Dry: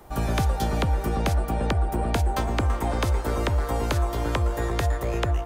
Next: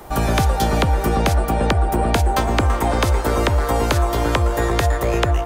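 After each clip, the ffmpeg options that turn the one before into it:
ffmpeg -i in.wav -filter_complex "[0:a]lowshelf=frequency=230:gain=-4,asplit=2[link_01][link_02];[link_02]alimiter=limit=-22dB:level=0:latency=1:release=243,volume=0dB[link_03];[link_01][link_03]amix=inputs=2:normalize=0,volume=5dB" out.wav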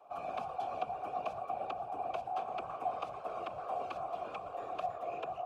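ffmpeg -i in.wav -filter_complex "[0:a]acrusher=bits=6:mode=log:mix=0:aa=0.000001,afftfilt=real='hypot(re,im)*cos(2*PI*random(0))':imag='hypot(re,im)*sin(2*PI*random(1))':win_size=512:overlap=0.75,asplit=3[link_01][link_02][link_03];[link_01]bandpass=frequency=730:width_type=q:width=8,volume=0dB[link_04];[link_02]bandpass=frequency=1090:width_type=q:width=8,volume=-6dB[link_05];[link_03]bandpass=frequency=2440:width_type=q:width=8,volume=-9dB[link_06];[link_04][link_05][link_06]amix=inputs=3:normalize=0,volume=-4dB" out.wav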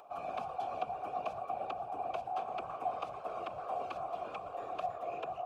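ffmpeg -i in.wav -af "acompressor=mode=upward:threshold=-52dB:ratio=2.5" out.wav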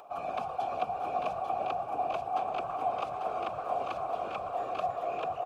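ffmpeg -i in.wav -af "aecho=1:1:422|844:0.335|0.501,volume=4.5dB" out.wav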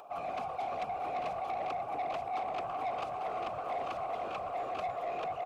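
ffmpeg -i in.wav -af "asoftclip=type=tanh:threshold=-30.5dB" out.wav

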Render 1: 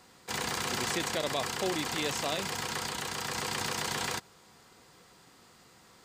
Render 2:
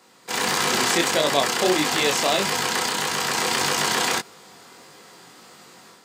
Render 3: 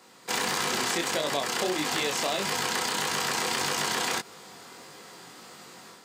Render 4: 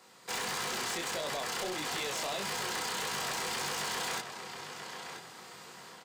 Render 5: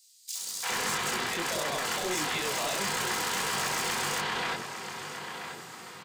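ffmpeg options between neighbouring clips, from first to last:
ffmpeg -i in.wav -af "highpass=190,dynaudnorm=framelen=210:gausssize=3:maxgain=8dB,flanger=delay=19.5:depth=4.6:speed=1.6,volume=6.5dB" out.wav
ffmpeg -i in.wav -af "acompressor=threshold=-25dB:ratio=6" out.wav
ffmpeg -i in.wav -filter_complex "[0:a]asplit=2[link_01][link_02];[link_02]adelay=985,lowpass=frequency=4600:poles=1,volume=-11dB,asplit=2[link_03][link_04];[link_04]adelay=985,lowpass=frequency=4600:poles=1,volume=0.34,asplit=2[link_05][link_06];[link_06]adelay=985,lowpass=frequency=4600:poles=1,volume=0.34,asplit=2[link_07][link_08];[link_08]adelay=985,lowpass=frequency=4600:poles=1,volume=0.34[link_09];[link_01][link_03][link_05][link_07][link_09]amix=inputs=5:normalize=0,asoftclip=type=tanh:threshold=-26.5dB,equalizer=frequency=280:width_type=o:width=0.68:gain=-5.5,volume=-3.5dB" out.wav
ffmpeg -i in.wav -filter_complex "[0:a]acrossover=split=600|4300[link_01][link_02][link_03];[link_02]adelay=350[link_04];[link_01]adelay=410[link_05];[link_05][link_04][link_03]amix=inputs=3:normalize=0,volume=6dB" out.wav

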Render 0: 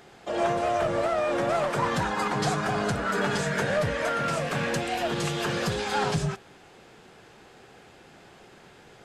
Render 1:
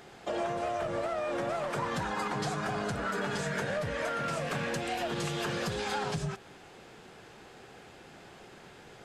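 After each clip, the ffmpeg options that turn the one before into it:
ffmpeg -i in.wav -af "acompressor=threshold=-30dB:ratio=6" out.wav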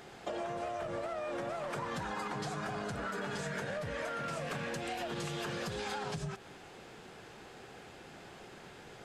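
ffmpeg -i in.wav -af "acompressor=threshold=-35dB:ratio=6" out.wav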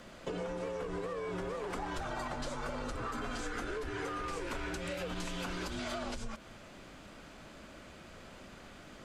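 ffmpeg -i in.wav -af "afreqshift=-170" out.wav

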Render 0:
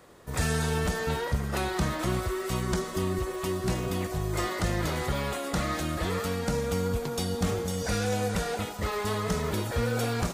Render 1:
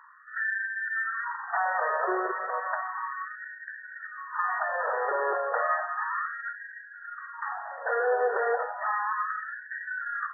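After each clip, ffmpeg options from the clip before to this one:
ffmpeg -i in.wav -af "asubboost=boost=5.5:cutoff=210,afftfilt=real='re*between(b*sr/4096,150,1900)':imag='im*between(b*sr/4096,150,1900)':win_size=4096:overlap=0.75,afftfilt=real='re*gte(b*sr/1024,380*pow(1500/380,0.5+0.5*sin(2*PI*0.33*pts/sr)))':imag='im*gte(b*sr/1024,380*pow(1500/380,0.5+0.5*sin(2*PI*0.33*pts/sr)))':win_size=1024:overlap=0.75,volume=8.5dB" out.wav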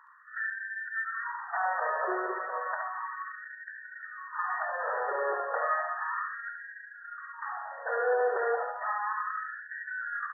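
ffmpeg -i in.wav -af "aecho=1:1:71|142|213:0.562|0.124|0.0272,volume=-4dB" out.wav

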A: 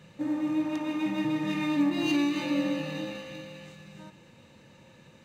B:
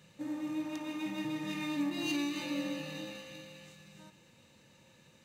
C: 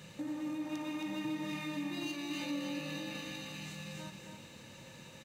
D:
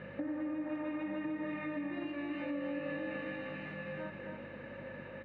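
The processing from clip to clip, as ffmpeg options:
ffmpeg -i in.wav -af "highshelf=frequency=3600:gain=10.5,volume=-8.5dB" out.wav
ffmpeg -i in.wav -af "alimiter=level_in=5.5dB:limit=-24dB:level=0:latency=1,volume=-5.5dB,acompressor=threshold=-49dB:ratio=3,aecho=1:1:271:0.531,volume=8.5dB" out.wav
ffmpeg -i in.wav -af "aeval=exprs='val(0)+0.00316*(sin(2*PI*50*n/s)+sin(2*PI*2*50*n/s)/2+sin(2*PI*3*50*n/s)/3+sin(2*PI*4*50*n/s)/4+sin(2*PI*5*50*n/s)/5)':channel_layout=same,acompressor=threshold=-41dB:ratio=6,highpass=160,equalizer=frequency=170:width_type=q:width=4:gain=-6,equalizer=frequency=560:width_type=q:width=4:gain=7,equalizer=frequency=910:width_type=q:width=4:gain=-4,equalizer=frequency=1700:width_type=q:width=4:gain=5,lowpass=frequency=2100:width=0.5412,lowpass=frequency=2100:width=1.3066,volume=6.5dB" out.wav

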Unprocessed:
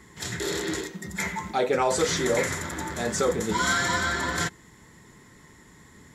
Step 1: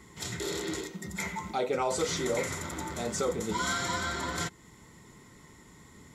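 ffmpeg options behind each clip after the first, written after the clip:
ffmpeg -i in.wav -filter_complex "[0:a]bandreject=frequency=1700:width=5.4,asplit=2[link_01][link_02];[link_02]acompressor=threshold=-35dB:ratio=6,volume=0dB[link_03];[link_01][link_03]amix=inputs=2:normalize=0,volume=-7.5dB" out.wav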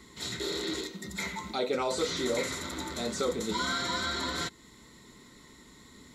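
ffmpeg -i in.wav -filter_complex "[0:a]equalizer=frequency=100:width_type=o:width=0.33:gain=-12,equalizer=frequency=160:width_type=o:width=0.33:gain=-6,equalizer=frequency=250:width_type=o:width=0.33:gain=4,equalizer=frequency=800:width_type=o:width=0.33:gain=-5,equalizer=frequency=4000:width_type=o:width=0.33:gain=12,acrossover=split=2300[link_01][link_02];[link_02]alimiter=level_in=5dB:limit=-24dB:level=0:latency=1:release=12,volume=-5dB[link_03];[link_01][link_03]amix=inputs=2:normalize=0" out.wav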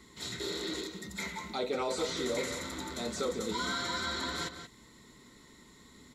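ffmpeg -i in.wav -filter_complex "[0:a]asplit=2[link_01][link_02];[link_02]volume=25dB,asoftclip=hard,volume=-25dB,volume=-10.5dB[link_03];[link_01][link_03]amix=inputs=2:normalize=0,asplit=2[link_04][link_05];[link_05]adelay=180.8,volume=-9dB,highshelf=frequency=4000:gain=-4.07[link_06];[link_04][link_06]amix=inputs=2:normalize=0,volume=-5.5dB" out.wav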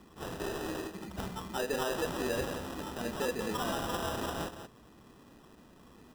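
ffmpeg -i in.wav -af "acrusher=samples=20:mix=1:aa=0.000001" out.wav

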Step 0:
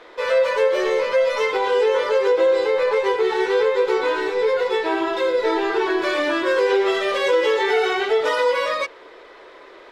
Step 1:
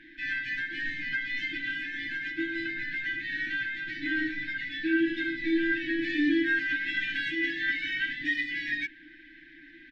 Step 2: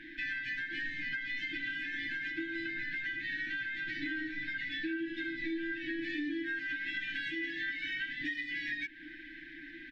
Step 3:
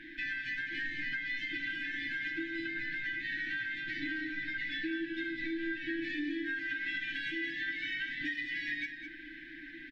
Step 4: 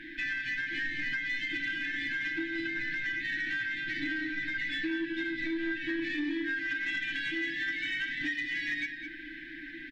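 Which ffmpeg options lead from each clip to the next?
ffmpeg -i in.wav -af "lowpass=1900,afftfilt=real='re*(1-between(b*sr/4096,350,1500))':imag='im*(1-between(b*sr/4096,350,1500))':win_size=4096:overlap=0.75,aecho=1:1:7:0.78" out.wav
ffmpeg -i in.wav -af "acompressor=threshold=-38dB:ratio=6,volume=3dB" out.wav
ffmpeg -i in.wav -af "aecho=1:1:206:0.355" out.wav
ffmpeg -i in.wav -af "asoftclip=type=tanh:threshold=-26.5dB,volume=4dB" out.wav

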